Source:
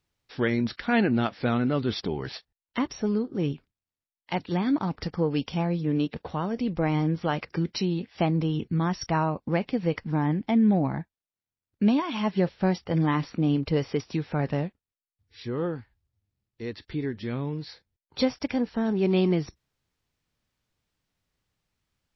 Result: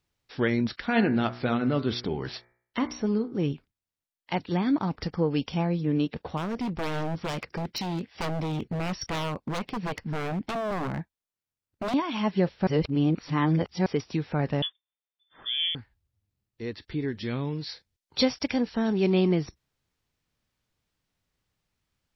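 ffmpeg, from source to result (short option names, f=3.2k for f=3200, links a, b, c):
-filter_complex "[0:a]asettb=1/sr,asplit=3[a][b][c];[a]atrim=end=0.804[d];[b]atrim=start=0.8:end=3.33,asetpts=PTS-STARTPTS,afade=t=in:d=0.004:c=qsin,afade=t=out:st=2.526:d=0.004:c=qsin,bandreject=f=60.15:t=h:w=4,bandreject=f=120.3:t=h:w=4,bandreject=f=180.45:t=h:w=4,bandreject=f=240.6:t=h:w=4,bandreject=f=300.75:t=h:w=4,bandreject=f=360.9:t=h:w=4,bandreject=f=421.05:t=h:w=4,bandreject=f=481.2:t=h:w=4,bandreject=f=541.35:t=h:w=4,bandreject=f=601.5:t=h:w=4,bandreject=f=661.65:t=h:w=4,bandreject=f=721.8:t=h:w=4,bandreject=f=781.95:t=h:w=4,bandreject=f=842.1:t=h:w=4,bandreject=f=902.25:t=h:w=4,bandreject=f=962.4:t=h:w=4,bandreject=f=1.02255k:t=h:w=4,bandreject=f=1.0827k:t=h:w=4,bandreject=f=1.14285k:t=h:w=4,bandreject=f=1.203k:t=h:w=4,bandreject=f=1.26315k:t=h:w=4,bandreject=f=1.3233k:t=h:w=4,bandreject=f=1.38345k:t=h:w=4,bandreject=f=1.4436k:t=h:w=4,bandreject=f=1.50375k:t=h:w=4,bandreject=f=1.5639k:t=h:w=4,bandreject=f=1.62405k:t=h:w=4,bandreject=f=1.6842k:t=h:w=4,bandreject=f=1.74435k:t=h:w=4,bandreject=f=1.8045k:t=h:w=4,bandreject=f=1.86465k:t=h:w=4,bandreject=f=1.9248k:t=h:w=4,bandreject=f=1.98495k:t=h:w=4,bandreject=f=2.0451k:t=h:w=4,bandreject=f=2.10525k:t=h:w=4,bandreject=f=2.1654k:t=h:w=4,bandreject=f=2.22555k:t=h:w=4,bandreject=f=2.2857k:t=h:w=4,bandreject=f=2.34585k:t=h:w=4[e];[c]atrim=start=3.326[f];[d][e]acrossfade=d=0.004:c1=hsin:c2=qsin[g];[g][f]acrossfade=d=0.004:c1=qsin:c2=hsin,asettb=1/sr,asplit=3[h][i][j];[h]atrim=end=6.374[k];[i]atrim=start=6.37:end=11.94,asetpts=PTS-STARTPTS,afade=t=in:d=0.004:c=qsin,afade=t=out:st=5.566:d=0.004:c=qsin,aeval=exprs='0.0596*(abs(mod(val(0)/0.0596+3,4)-2)-1)':c=same[l];[j]atrim=start=11.936[m];[k][l]acrossfade=d=0.004:c1=hsin:c2=qsin[n];[n][m]acrossfade=d=0.004:c1=qsin:c2=hsin,asettb=1/sr,asplit=3[o][p][q];[o]atrim=end=14.624[r];[p]atrim=start=14.62:end=15.75,asetpts=PTS-STARTPTS,afade=t=in:d=0.004:c=qsin,afade=t=out:st=1.126:d=0.004:c=qsin,lowpass=f=3.1k:t=q:w=0.5098,lowpass=f=3.1k:t=q:w=0.6013,lowpass=f=3.1k:t=q:w=0.9,lowpass=f=3.1k:t=q:w=2.563,afreqshift=-3600[s];[q]atrim=start=15.746[t];[r][s]acrossfade=d=0.004:c1=hsin:c2=qsin[u];[u][t]acrossfade=d=0.004:c1=qsin:c2=hsin,asettb=1/sr,asplit=3[v][w][x];[v]atrim=end=17.084[y];[w]atrim=start=17.08:end=19.1,asetpts=PTS-STARTPTS,afade=t=in:d=0.004:c=qsin,afade=t=out:st=2.016:d=0.004:c=qsin,equalizer=f=5k:t=o:w=2.2:g=6.5[z];[x]atrim=start=19.096[aa];[y][z]acrossfade=d=0.004:c1=hsin:c2=qsin[ab];[ab][aa]acrossfade=d=0.004:c1=qsin:c2=hsin,asplit=3[ac][ad][ae];[ac]atrim=end=12.672[af];[ad]atrim=start=12.668:end=13.862,asetpts=PTS-STARTPTS,areverse[ag];[ae]atrim=start=13.858[ah];[af][ag]acrossfade=d=0.004:c1=hsin:c2=hsin[ai];[ai][ah]acrossfade=d=0.004:c1=hsin:c2=hsin"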